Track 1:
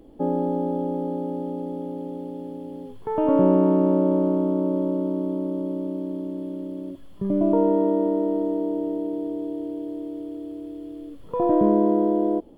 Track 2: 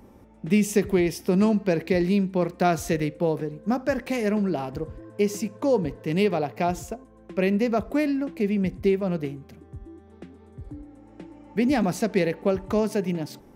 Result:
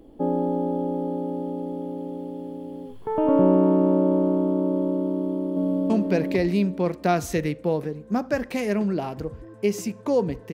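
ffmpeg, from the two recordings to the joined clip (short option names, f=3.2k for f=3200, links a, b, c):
-filter_complex "[0:a]apad=whole_dur=10.53,atrim=end=10.53,atrim=end=5.902[a];[1:a]atrim=start=1.458:end=6.09[b];[a][b]acrossfade=d=0.004:c1=hsin:c2=hsin,asplit=2[c][d];[d]afade=t=in:st=5.11:d=0.01,afade=t=out:st=5.9:d=0.01,aecho=0:1:450|900|1350|1800|2250:0.891251|0.311938|0.109178|0.0382124|0.0133743[e];[c][e]amix=inputs=2:normalize=0"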